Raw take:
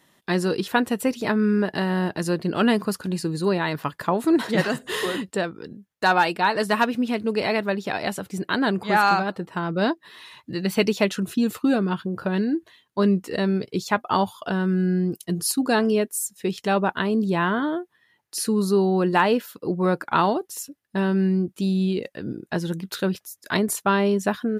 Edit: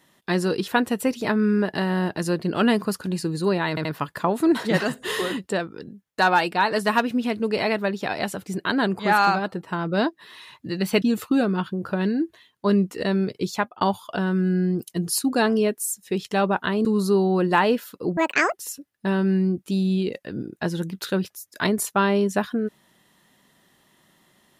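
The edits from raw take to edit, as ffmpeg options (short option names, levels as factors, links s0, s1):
-filter_complex "[0:a]asplit=8[s0][s1][s2][s3][s4][s5][s6][s7];[s0]atrim=end=3.772[s8];[s1]atrim=start=3.688:end=3.772[s9];[s2]atrim=start=3.688:end=10.862[s10];[s3]atrim=start=11.348:end=14.14,asetpts=PTS-STARTPTS,afade=t=out:st=2.532:d=0.26[s11];[s4]atrim=start=14.14:end=17.182,asetpts=PTS-STARTPTS,afade=t=in:d=0.004:c=hsin[s12];[s5]atrim=start=18.468:end=19.794[s13];[s6]atrim=start=19.79:end=20.44,asetpts=PTS-STARTPTS,asetrate=78057,aresample=44100[s14];[s7]atrim=start=20.436[s15];[s8][s9]acrossfade=d=0.004:c1=hsin:c2=hsin[s16];[s16][s10]acrossfade=d=0.004:c1=hsin:c2=hsin[s17];[s11][s12]concat=n=2:v=0:a=1[s18];[s17][s18]acrossfade=d=0.004:c1=hsin:c2=hsin[s19];[s19][s13]acrossfade=d=0.004:c1=hsin:c2=hsin[s20];[s20][s14]acrossfade=d=0.004:c1=hsin:c2=hsin[s21];[s21][s15]acrossfade=d=0.004:c1=hsin:c2=hsin"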